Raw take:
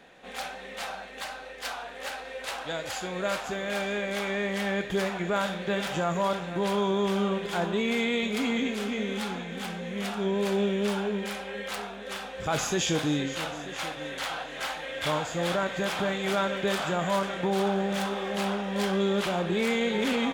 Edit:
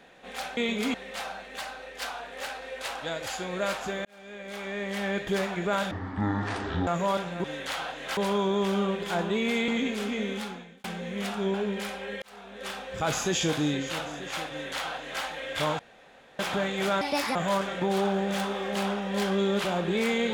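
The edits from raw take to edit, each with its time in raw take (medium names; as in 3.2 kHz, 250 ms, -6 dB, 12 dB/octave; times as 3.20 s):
3.68–4.84 s: fade in
5.54–6.03 s: speed 51%
8.11–8.48 s: move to 0.57 s
9.06–9.64 s: fade out
10.34–11.00 s: delete
11.68–12.15 s: fade in
13.96–14.69 s: copy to 6.60 s
15.25–15.85 s: room tone
16.47–16.97 s: speed 146%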